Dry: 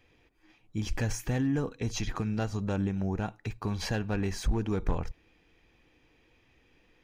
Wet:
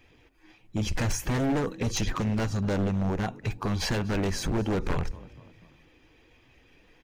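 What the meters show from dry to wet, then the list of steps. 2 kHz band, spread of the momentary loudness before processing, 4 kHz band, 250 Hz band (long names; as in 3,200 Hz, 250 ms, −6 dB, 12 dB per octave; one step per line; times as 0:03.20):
+4.5 dB, 7 LU, +6.0 dB, +3.0 dB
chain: spectral magnitudes quantised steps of 15 dB
echo with shifted repeats 243 ms, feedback 45%, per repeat +46 Hz, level −23 dB
wave folding −26.5 dBFS
level +6 dB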